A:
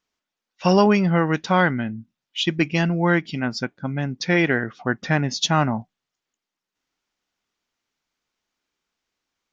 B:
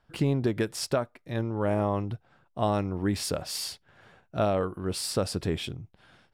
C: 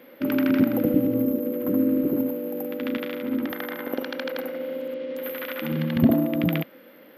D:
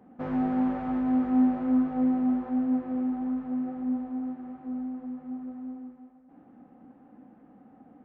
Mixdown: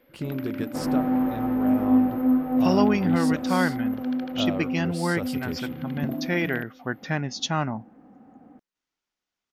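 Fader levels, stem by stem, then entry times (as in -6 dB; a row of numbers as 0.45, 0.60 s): -6.5, -6.5, -12.0, +3.0 dB; 2.00, 0.00, 0.00, 0.55 s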